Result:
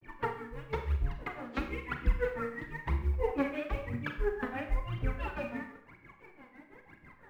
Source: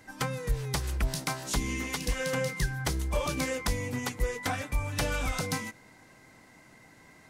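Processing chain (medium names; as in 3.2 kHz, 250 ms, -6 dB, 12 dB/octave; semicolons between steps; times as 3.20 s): low-pass 2.3 kHz 24 dB/octave; peaking EQ 340 Hz +5.5 dB 0.47 oct; in parallel at +2.5 dB: compression 20:1, threshold -38 dBFS, peak gain reduction 17 dB; on the sum: companded quantiser 8-bit; granulator 164 ms, grains 6 per s, spray 33 ms, pitch spread up and down by 3 st; phaser 1 Hz, delay 4.4 ms, feedback 79%; Schroeder reverb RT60 0.62 s, combs from 30 ms, DRR 5 dB; trim -8 dB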